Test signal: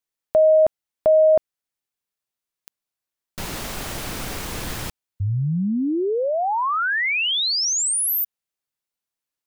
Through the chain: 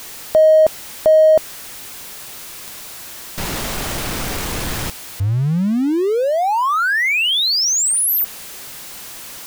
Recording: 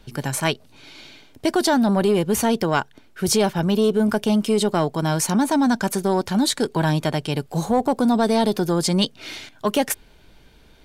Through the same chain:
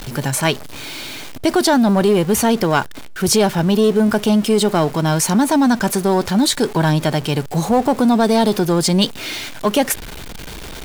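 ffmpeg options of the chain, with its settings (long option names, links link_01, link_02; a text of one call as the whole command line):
ffmpeg -i in.wav -af "aeval=exprs='val(0)+0.5*0.0316*sgn(val(0))':channel_layout=same,volume=3.5dB" out.wav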